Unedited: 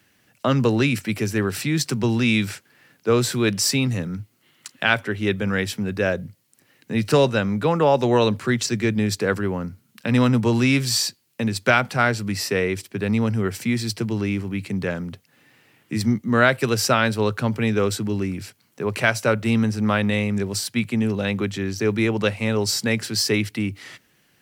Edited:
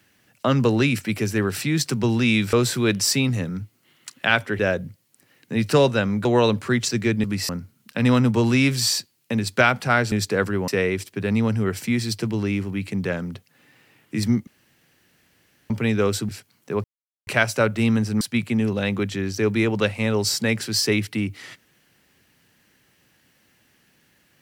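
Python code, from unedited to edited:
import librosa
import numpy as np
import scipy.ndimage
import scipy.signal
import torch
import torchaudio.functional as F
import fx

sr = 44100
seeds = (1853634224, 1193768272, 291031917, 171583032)

y = fx.edit(x, sr, fx.cut(start_s=2.53, length_s=0.58),
    fx.cut(start_s=5.17, length_s=0.81),
    fx.cut(start_s=7.64, length_s=0.39),
    fx.swap(start_s=9.02, length_s=0.56, other_s=12.21, other_length_s=0.25),
    fx.room_tone_fill(start_s=16.25, length_s=1.23),
    fx.cut(start_s=18.07, length_s=0.32),
    fx.insert_silence(at_s=18.94, length_s=0.43),
    fx.cut(start_s=19.88, length_s=0.75), tone=tone)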